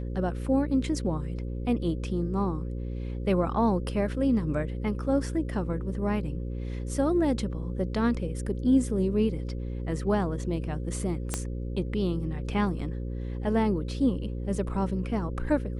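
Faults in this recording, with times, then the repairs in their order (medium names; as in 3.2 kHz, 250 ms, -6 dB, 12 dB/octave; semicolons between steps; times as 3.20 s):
buzz 60 Hz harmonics 9 -33 dBFS
11.34 s: pop -13 dBFS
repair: de-click; de-hum 60 Hz, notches 9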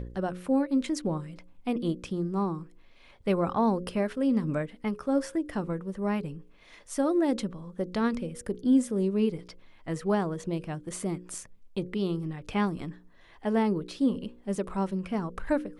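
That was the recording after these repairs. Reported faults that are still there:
11.34 s: pop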